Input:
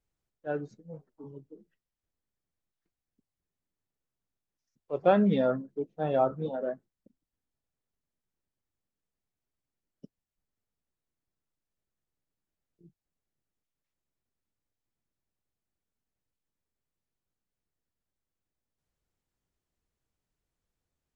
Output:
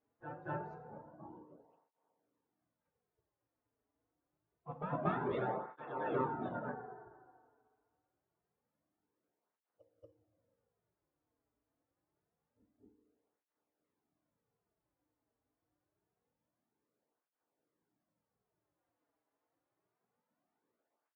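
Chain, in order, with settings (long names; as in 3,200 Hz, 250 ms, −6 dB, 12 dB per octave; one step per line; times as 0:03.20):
in parallel at −5.5 dB: asymmetric clip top −22.5 dBFS
on the sum: gate on every frequency bin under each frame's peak −15 dB weak
downward compressor 4 to 1, threshold −36 dBFS, peak gain reduction 9 dB
low-pass filter 1,100 Hz 12 dB per octave
double-tracking delay 17 ms −13.5 dB
on a send: backwards echo 234 ms −7.5 dB
on the sum: feedback delay network reverb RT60 1.9 s, low-frequency decay 0.8×, high-frequency decay 0.4×, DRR 6.5 dB
through-zero flanger with one copy inverted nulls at 0.26 Hz, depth 5.8 ms
level +8 dB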